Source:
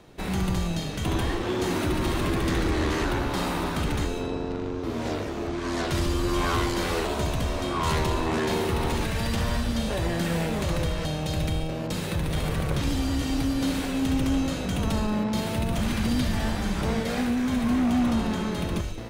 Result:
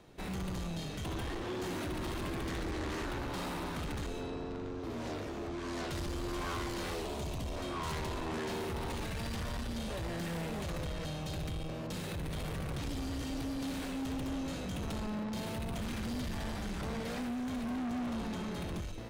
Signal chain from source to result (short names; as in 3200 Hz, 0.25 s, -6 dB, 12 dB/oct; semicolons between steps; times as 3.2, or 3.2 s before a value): 6.95–7.56 bell 1500 Hz -9 dB 0.77 oct; soft clip -27.5 dBFS, distortion -10 dB; gain -6.5 dB